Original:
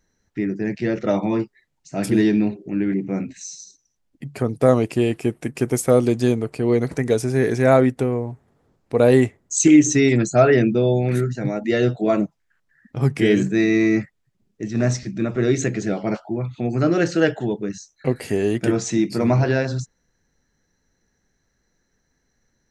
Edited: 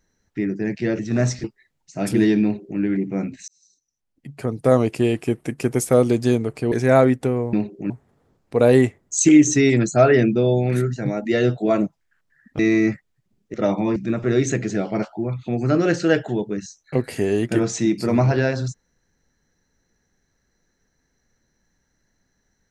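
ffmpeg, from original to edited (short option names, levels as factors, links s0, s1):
-filter_complex "[0:a]asplit=10[s0][s1][s2][s3][s4][s5][s6][s7][s8][s9];[s0]atrim=end=0.992[s10];[s1]atrim=start=14.628:end=15.082[s11];[s2]atrim=start=1.408:end=3.45,asetpts=PTS-STARTPTS,afade=t=out:st=2.038:d=0.004:c=hsin[s12];[s3]atrim=start=3.45:end=6.692,asetpts=PTS-STARTPTS,afade=t=in:d=1.34[s13];[s4]atrim=start=7.478:end=8.292[s14];[s5]atrim=start=2.398:end=2.772[s15];[s6]atrim=start=8.288:end=12.982[s16];[s7]atrim=start=13.678:end=14.632[s17];[s8]atrim=start=0.988:end=1.412[s18];[s9]atrim=start=15.078[s19];[s10][s11]acrossfade=d=0.004:c1=hsin:c2=hsin[s20];[s12][s13]concat=n=2:v=0:a=1[s21];[s20][s21]acrossfade=d=0.004:c1=hsin:c2=hsin[s22];[s22][s14]acrossfade=d=0.004:c1=hsin:c2=hsin[s23];[s23][s15]acrossfade=d=0.004:c1=hsin:c2=hsin[s24];[s24][s16]acrossfade=d=0.004:c1=hsin:c2=hsin[s25];[s25][s17]acrossfade=d=0.004:c1=hsin:c2=hsin[s26];[s26][s18]acrossfade=d=0.004:c1=hsin:c2=hsin[s27];[s27][s19]acrossfade=d=0.004:c1=hsin:c2=hsin"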